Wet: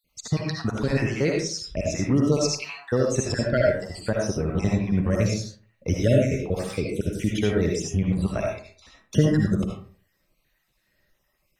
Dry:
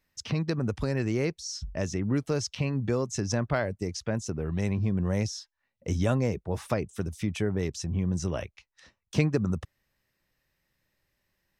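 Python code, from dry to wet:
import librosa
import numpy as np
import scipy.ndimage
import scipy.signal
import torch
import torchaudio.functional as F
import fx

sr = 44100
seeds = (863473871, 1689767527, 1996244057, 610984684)

y = fx.spec_dropout(x, sr, seeds[0], share_pct=48)
y = fx.rev_freeverb(y, sr, rt60_s=0.46, hf_ratio=0.55, predelay_ms=35, drr_db=-1.5)
y = F.gain(torch.from_numpy(y), 5.5).numpy()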